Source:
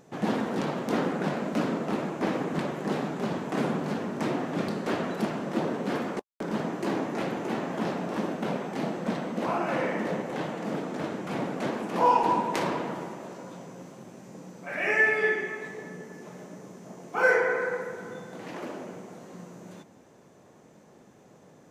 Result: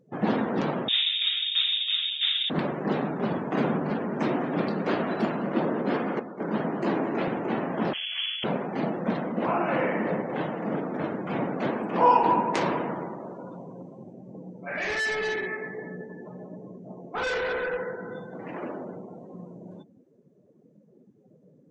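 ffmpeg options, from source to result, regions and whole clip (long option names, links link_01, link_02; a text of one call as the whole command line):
ffmpeg -i in.wav -filter_complex "[0:a]asettb=1/sr,asplit=3[link_01][link_02][link_03];[link_01]atrim=end=0.884[link_04];[link_02]atrim=start=0.88:end=2.5,asetpts=PTS-STARTPTS,afade=type=in:duration=0.004:curve=qsin,afade=type=out:start_time=1.616:duration=0.004:curve=qsin,acrossover=split=2700[link_05][link_06];[link_06]acompressor=threshold=-56dB:ratio=4:attack=1:release=60[link_07];[link_05][link_07]amix=inputs=2:normalize=0,aeval=exprs='clip(val(0),-1,0.075)':channel_layout=same,lowpass=frequency=3300:width_type=q:width=0.5098,lowpass=frequency=3300:width_type=q:width=0.6013,lowpass=frequency=3300:width_type=q:width=0.9,lowpass=frequency=3300:width_type=q:width=2.563,afreqshift=-3900[link_08];[link_03]atrim=start=2.496[link_09];[link_04][link_08]acrossfade=duration=0.004:curve1=hsin:curve2=qsin[link_10];[link_10][link_09]acrossfade=duration=0.004:curve1=qsin:curve2=hsin,asettb=1/sr,asplit=3[link_11][link_12][link_13];[link_11]atrim=end=3.904[link_14];[link_12]atrim=start=3.9:end=7.28,asetpts=PTS-STARTPTS,afade=type=in:duration=0.004:curve=qsin,afade=type=out:start_time=3.376:duration=0.004:curve=qsin,highpass=120,aecho=1:1:209:0.355,atrim=end_sample=149058[link_15];[link_13]atrim=start=7.276[link_16];[link_14][link_15]acrossfade=duration=0.004:curve1=hsin:curve2=qsin[link_17];[link_17][link_16]acrossfade=duration=0.004:curve1=qsin:curve2=hsin,asettb=1/sr,asplit=3[link_18][link_19][link_20];[link_18]atrim=end=7.934[link_21];[link_19]atrim=start=7.93:end=8.44,asetpts=PTS-STARTPTS,afade=type=in:duration=0.004:curve=qsin,afade=type=out:start_time=0.506:duration=0.004:curve=qsin,aeval=exprs='max(val(0),0)':channel_layout=same,lowpass=frequency=2900:width_type=q:width=0.5098,lowpass=frequency=2900:width_type=q:width=0.6013,lowpass=frequency=2900:width_type=q:width=0.9,lowpass=frequency=2900:width_type=q:width=2.563,afreqshift=-3400[link_22];[link_20]atrim=start=8.436[link_23];[link_21][link_22]acrossfade=duration=0.004:curve1=hsin:curve2=qsin[link_24];[link_24][link_23]acrossfade=duration=0.004:curve1=qsin:curve2=hsin,asettb=1/sr,asplit=3[link_25][link_26][link_27];[link_25]atrim=end=14.134[link_28];[link_26]atrim=start=14.13:end=18.12,asetpts=PTS-STARTPTS,afade=type=in:duration=0.004:curve=qsin,afade=type=out:start_time=3.986:duration=0.004:curve=qsin,highshelf=frequency=5100:gain=-5,volume=29.5dB,asoftclip=hard,volume=-29.5dB,asplit=2[link_29][link_30];[link_30]adelay=16,volume=-12.5dB[link_31];[link_29][link_31]amix=inputs=2:normalize=0,atrim=end_sample=175959[link_32];[link_27]atrim=start=18.116[link_33];[link_28][link_32]acrossfade=duration=0.004:curve1=hsin:curve2=qsin[link_34];[link_34][link_33]acrossfade=duration=0.004:curve1=qsin:curve2=hsin,afftdn=noise_reduction=27:noise_floor=-45,lowpass=10000,volume=2.5dB" out.wav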